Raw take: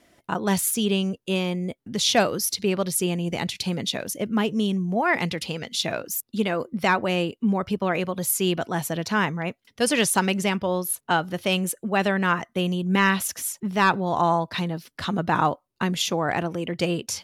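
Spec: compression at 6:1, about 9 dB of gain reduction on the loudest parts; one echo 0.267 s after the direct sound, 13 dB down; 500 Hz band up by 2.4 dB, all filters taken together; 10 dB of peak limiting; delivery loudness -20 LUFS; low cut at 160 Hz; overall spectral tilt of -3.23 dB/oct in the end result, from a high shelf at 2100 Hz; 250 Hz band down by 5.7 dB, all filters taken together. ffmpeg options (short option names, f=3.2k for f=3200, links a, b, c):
-af "highpass=160,equalizer=f=250:t=o:g=-8.5,equalizer=f=500:t=o:g=5,highshelf=f=2.1k:g=7.5,acompressor=threshold=-22dB:ratio=6,alimiter=limit=-18.5dB:level=0:latency=1,aecho=1:1:267:0.224,volume=9.5dB"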